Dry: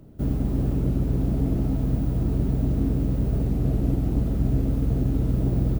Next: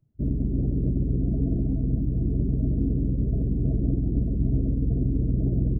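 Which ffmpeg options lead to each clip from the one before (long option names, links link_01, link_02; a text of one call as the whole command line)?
ffmpeg -i in.wav -af "afftdn=noise_reduction=28:noise_floor=-29,equalizer=frequency=520:width_type=o:width=0.38:gain=-3.5,volume=-1dB" out.wav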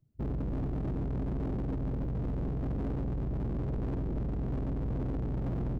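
ffmpeg -i in.wav -af "aeval=exprs='0.266*(cos(1*acos(clip(val(0)/0.266,-1,1)))-cos(1*PI/2))+0.0335*(cos(6*acos(clip(val(0)/0.266,-1,1)))-cos(6*PI/2))':channel_layout=same,asoftclip=type=hard:threshold=-27.5dB,volume=-2.5dB" out.wav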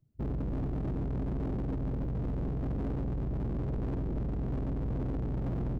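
ffmpeg -i in.wav -af anull out.wav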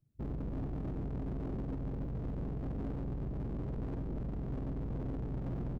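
ffmpeg -i in.wav -filter_complex "[0:a]asplit=2[link_01][link_02];[link_02]adelay=41,volume=-10.5dB[link_03];[link_01][link_03]amix=inputs=2:normalize=0,volume=-5dB" out.wav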